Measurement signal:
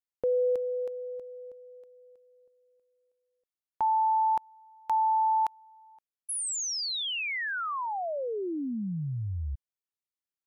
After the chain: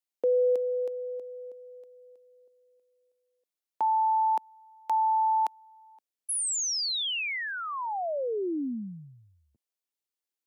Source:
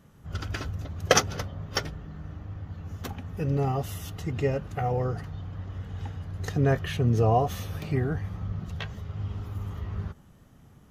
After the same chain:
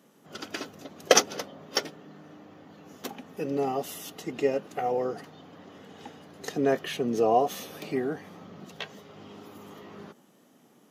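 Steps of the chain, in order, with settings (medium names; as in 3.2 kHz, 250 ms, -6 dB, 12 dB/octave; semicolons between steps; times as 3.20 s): high-pass 240 Hz 24 dB/octave; peaking EQ 1.4 kHz -5.5 dB 1.3 oct; trim +3 dB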